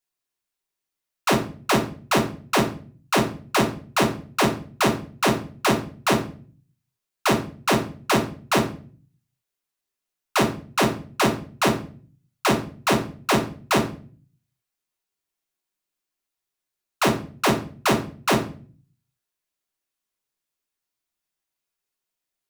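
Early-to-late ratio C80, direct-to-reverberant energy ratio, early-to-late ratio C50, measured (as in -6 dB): 15.5 dB, 1.0 dB, 10.5 dB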